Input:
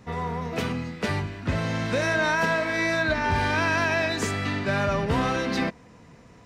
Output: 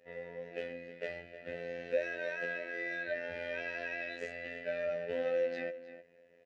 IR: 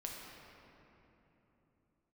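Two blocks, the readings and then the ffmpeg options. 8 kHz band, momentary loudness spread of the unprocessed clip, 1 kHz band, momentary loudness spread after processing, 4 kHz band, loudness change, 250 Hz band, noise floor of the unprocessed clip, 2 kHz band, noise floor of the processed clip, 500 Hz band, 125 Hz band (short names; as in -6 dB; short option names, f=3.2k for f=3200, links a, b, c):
under -25 dB, 7 LU, -24.0 dB, 11 LU, -19.5 dB, -13.0 dB, -21.5 dB, -51 dBFS, -13.0 dB, -63 dBFS, -7.5 dB, -29.0 dB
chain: -filter_complex "[0:a]asplit=3[a][b][c];[a]bandpass=f=530:t=q:w=8,volume=0dB[d];[b]bandpass=f=1.84k:t=q:w=8,volume=-6dB[e];[c]bandpass=f=2.48k:t=q:w=8,volume=-9dB[f];[d][e][f]amix=inputs=3:normalize=0,asplit=2[g][h];[h]adelay=309,volume=-13dB,highshelf=f=4k:g=-6.95[i];[g][i]amix=inputs=2:normalize=0,afftfilt=real='hypot(re,im)*cos(PI*b)':imag='0':win_size=2048:overlap=0.75,volume=2dB"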